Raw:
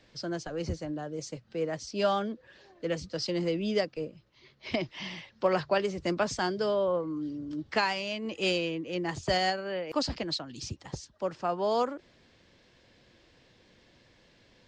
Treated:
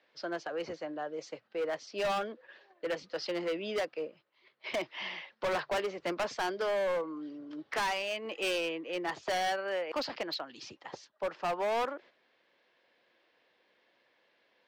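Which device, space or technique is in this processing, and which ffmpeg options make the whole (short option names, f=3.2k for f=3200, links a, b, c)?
walkie-talkie: -af "highpass=530,lowpass=2.9k,asoftclip=type=hard:threshold=-32dB,agate=range=-8dB:threshold=-58dB:ratio=16:detection=peak,volume=3.5dB"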